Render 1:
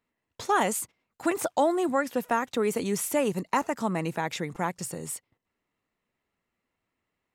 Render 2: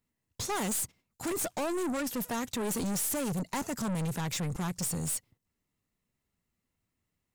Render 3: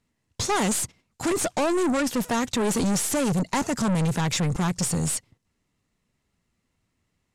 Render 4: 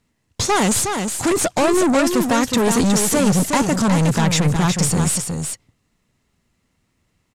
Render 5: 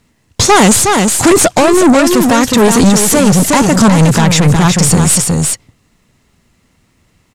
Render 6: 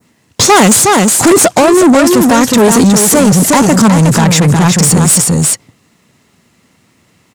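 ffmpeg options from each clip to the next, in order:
ffmpeg -i in.wav -af "bass=frequency=250:gain=13,treble=frequency=4000:gain=12,agate=range=-7dB:threshold=-44dB:ratio=16:detection=peak,aeval=exprs='(tanh(31.6*val(0)+0.2)-tanh(0.2))/31.6':channel_layout=same" out.wav
ffmpeg -i in.wav -af "lowpass=8400,volume=9dB" out.wav
ffmpeg -i in.wav -af "aecho=1:1:365:0.501,volume=6.5dB" out.wav
ffmpeg -i in.wav -af "alimiter=level_in=13.5dB:limit=-1dB:release=50:level=0:latency=1,volume=-1dB" out.wav
ffmpeg -i in.wav -af "highpass=130,adynamicequalizer=threshold=0.0398:dfrequency=3100:dqfactor=0.89:tfrequency=3100:tqfactor=0.89:attack=5:release=100:ratio=0.375:range=2:mode=cutabove:tftype=bell,acontrast=53,volume=-1dB" out.wav

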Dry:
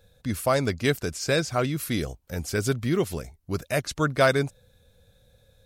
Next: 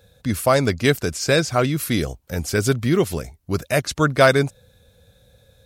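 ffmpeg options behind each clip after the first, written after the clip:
ffmpeg -i in.wav -af "highpass=45,volume=6dB" out.wav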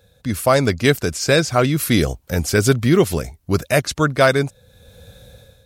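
ffmpeg -i in.wav -af "dynaudnorm=framelen=150:gausssize=5:maxgain=12dB,volume=-1dB" out.wav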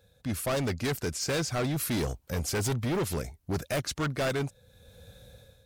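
ffmpeg -i in.wav -af "asoftclip=type=hard:threshold=-18dB,volume=-8dB" out.wav

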